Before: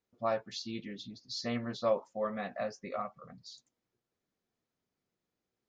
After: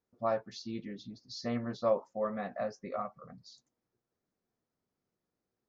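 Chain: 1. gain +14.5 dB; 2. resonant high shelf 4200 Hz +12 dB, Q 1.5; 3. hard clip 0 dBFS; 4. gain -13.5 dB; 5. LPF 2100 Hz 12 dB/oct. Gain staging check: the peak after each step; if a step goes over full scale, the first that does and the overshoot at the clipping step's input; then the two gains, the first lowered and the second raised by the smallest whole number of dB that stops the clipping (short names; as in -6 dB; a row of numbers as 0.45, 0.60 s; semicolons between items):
-3.5, -3.5, -3.5, -17.0, -17.0 dBFS; no overload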